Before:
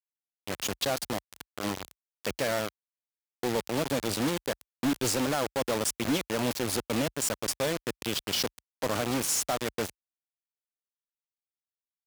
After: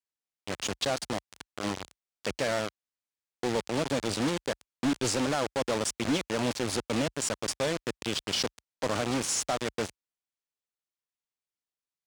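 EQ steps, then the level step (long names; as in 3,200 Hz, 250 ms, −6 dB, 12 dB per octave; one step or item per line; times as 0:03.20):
Savitzky-Golay smoothing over 9 samples
0.0 dB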